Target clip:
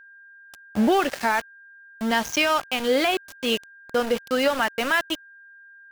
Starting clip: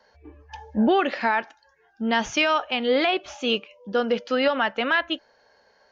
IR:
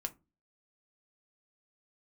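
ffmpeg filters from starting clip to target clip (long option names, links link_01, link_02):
-af "aexciter=amount=2.8:drive=2.3:freq=5000,aeval=exprs='val(0)*gte(abs(val(0)),0.0398)':channel_layout=same,aeval=exprs='val(0)+0.00501*sin(2*PI*1600*n/s)':channel_layout=same"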